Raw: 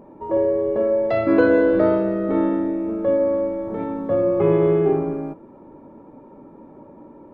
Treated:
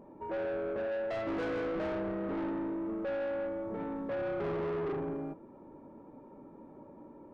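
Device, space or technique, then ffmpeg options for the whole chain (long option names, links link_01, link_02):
saturation between pre-emphasis and de-emphasis: -af "highshelf=frequency=3700:gain=10.5,asoftclip=type=tanh:threshold=-24dB,highshelf=frequency=3700:gain=-10.5,volume=-8dB"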